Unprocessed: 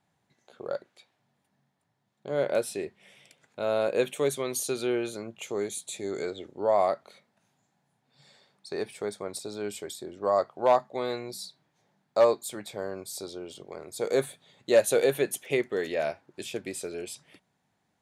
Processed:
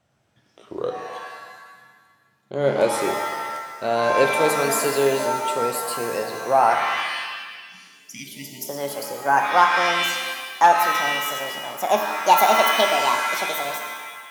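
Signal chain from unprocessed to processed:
gliding playback speed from 82% → 170%
time-frequency box erased 0:06.79–0:08.66, 280–1,900 Hz
reverb with rising layers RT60 1.4 s, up +7 semitones, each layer −2 dB, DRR 4.5 dB
level +6 dB

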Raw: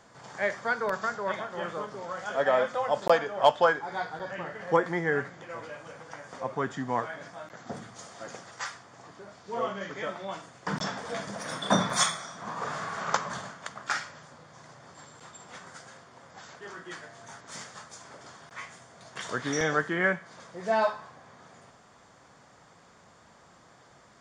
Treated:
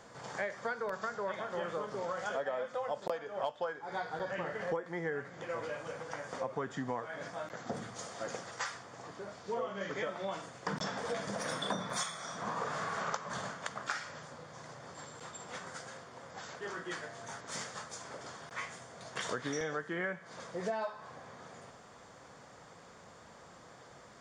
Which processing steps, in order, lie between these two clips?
parametric band 490 Hz +4.5 dB 0.42 octaves
downward compressor 10 to 1, threshold −34 dBFS, peak gain reduction 20.5 dB
level +1 dB

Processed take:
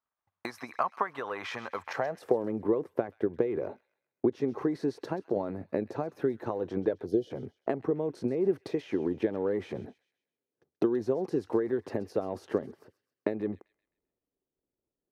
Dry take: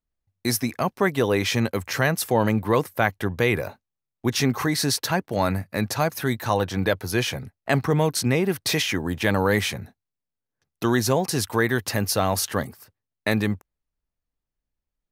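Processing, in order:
transient designer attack +11 dB, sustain +7 dB
downward compressor 6 to 1, threshold −26 dBFS, peak gain reduction 18 dB
gain on a spectral selection 0:07.06–0:07.31, 760–2,900 Hz −20 dB
band-pass filter sweep 1,100 Hz → 380 Hz, 0:01.75–0:02.41
delay with a high-pass on its return 131 ms, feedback 41%, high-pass 2,700 Hz, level −13 dB
level +6.5 dB

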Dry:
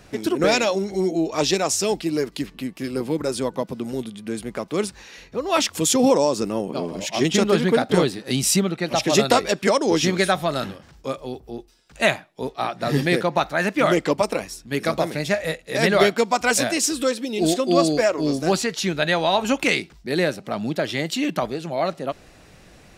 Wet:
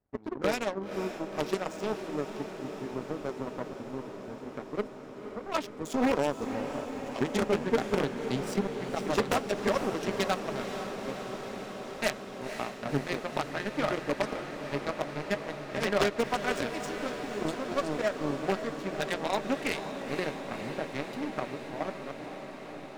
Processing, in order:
adaptive Wiener filter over 15 samples
high-shelf EQ 4,200 Hz −11.5 dB
in parallel at −0.5 dB: downward compressor, threshold −28 dBFS, peak gain reduction 15.5 dB
on the sum: notch comb filter 170 Hz
power curve on the samples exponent 2
wave folding −16 dBFS
on a send: feedback delay with all-pass diffusion 509 ms, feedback 79%, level −9 dB

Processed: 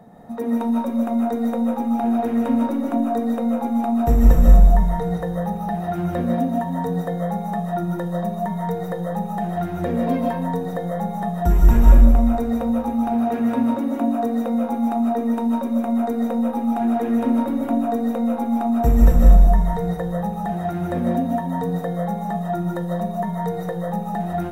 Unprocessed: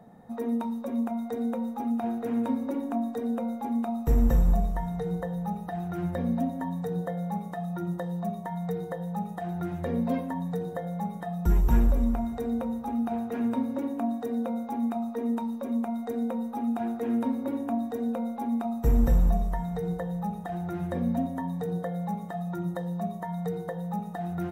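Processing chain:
comb and all-pass reverb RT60 0.49 s, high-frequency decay 0.65×, pre-delay 110 ms, DRR −1 dB
level +5.5 dB

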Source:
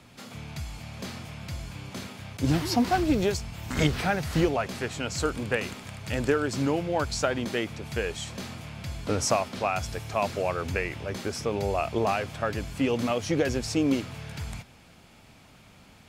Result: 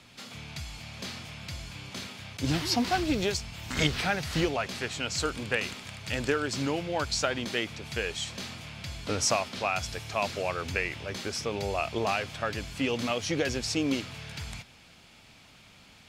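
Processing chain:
parametric band 3,800 Hz +8.5 dB 2.4 octaves
level −4.5 dB

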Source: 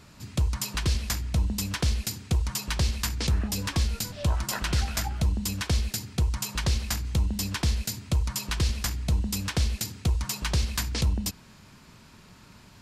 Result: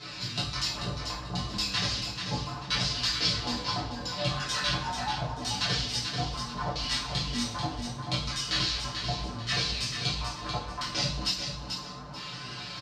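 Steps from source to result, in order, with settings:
pitch shifter gated in a rhythm +2.5 semitones, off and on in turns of 251 ms
high-pass filter 50 Hz
low-shelf EQ 430 Hz −7.5 dB
comb filter 6.8 ms, depth 95%
downward compressor 2.5 to 1, threshold −44 dBFS, peak gain reduction 14 dB
multi-voice chorus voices 6, 0.32 Hz, delay 19 ms, depth 3.3 ms
auto-filter low-pass square 0.74 Hz 890–4,500 Hz
on a send: repeating echo 438 ms, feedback 28%, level −6.5 dB
on the sum: coupled-rooms reverb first 0.48 s, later 1.7 s, DRR −5.5 dB
level +7 dB

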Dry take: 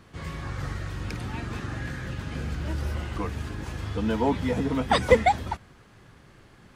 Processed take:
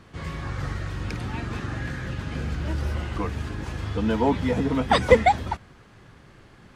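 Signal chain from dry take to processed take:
high-shelf EQ 9,700 Hz −8 dB
level +2.5 dB

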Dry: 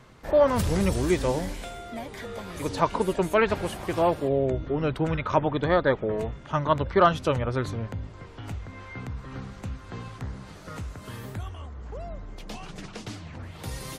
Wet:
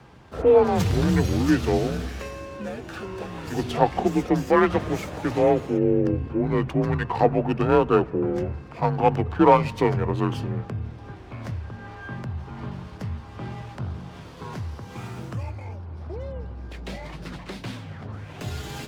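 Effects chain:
low-pass filter 11,000 Hz
wrong playback speed 45 rpm record played at 33 rpm
frequency shifter +35 Hz
on a send at −24 dB: convolution reverb RT60 2.4 s, pre-delay 6 ms
on the sum: windowed peak hold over 3 samples
level +3 dB

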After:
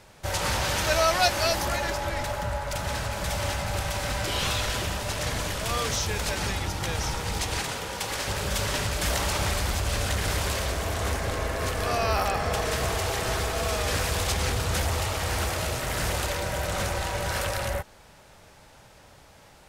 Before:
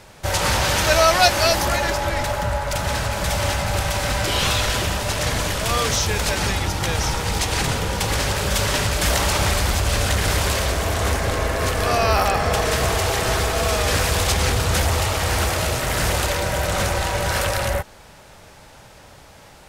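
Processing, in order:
0:07.60–0:08.28: low-shelf EQ 210 Hz −12 dB
level −7 dB

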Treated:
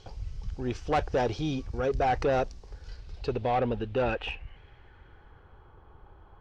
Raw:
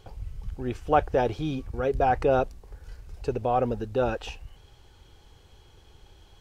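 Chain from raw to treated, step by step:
low-pass filter sweep 5,500 Hz → 1,200 Hz, 0:02.65–0:05.76
soft clipping −20 dBFS, distortion −12 dB

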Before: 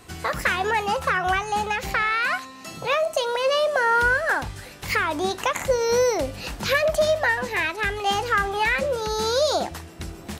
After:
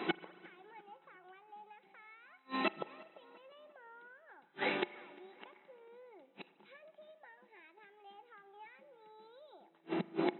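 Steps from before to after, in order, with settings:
in parallel at −0.5 dB: downward compressor 8 to 1, threshold −32 dBFS, peak gain reduction 15.5 dB
on the sum: gate with flip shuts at −21 dBFS, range −41 dB
linear-phase brick-wall band-pass 160–4,000 Hz
hollow resonant body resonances 360/840/2,200 Hz, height 10 dB
on a send: tape delay 349 ms, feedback 54%, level −22 dB, low-pass 2,800 Hz
on the sum: spring reverb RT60 2.1 s, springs 39 ms, chirp 40 ms, DRR 17.5 dB
level +1.5 dB

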